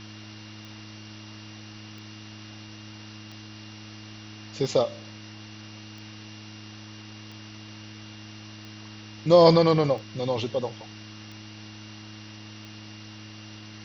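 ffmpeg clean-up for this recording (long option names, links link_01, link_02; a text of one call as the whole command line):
ffmpeg -i in.wav -af "adeclick=threshold=4,bandreject=frequency=106.4:width_type=h:width=4,bandreject=frequency=212.8:width_type=h:width=4,bandreject=frequency=319.2:width_type=h:width=4,bandreject=frequency=2800:width=30,afwtdn=0.0071" out.wav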